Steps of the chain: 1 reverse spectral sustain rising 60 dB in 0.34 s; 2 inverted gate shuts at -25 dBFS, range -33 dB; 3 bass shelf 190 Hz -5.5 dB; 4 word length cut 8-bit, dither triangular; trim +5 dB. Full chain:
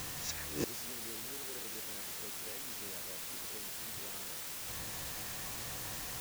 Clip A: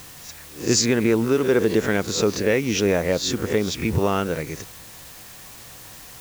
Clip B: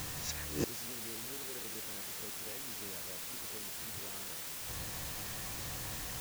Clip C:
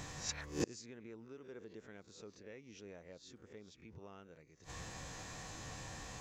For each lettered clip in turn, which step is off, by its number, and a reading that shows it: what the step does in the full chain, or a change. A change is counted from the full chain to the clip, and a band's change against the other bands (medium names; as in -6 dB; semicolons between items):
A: 2, momentary loudness spread change +18 LU; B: 3, 125 Hz band +3.5 dB; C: 4, crest factor change +6.0 dB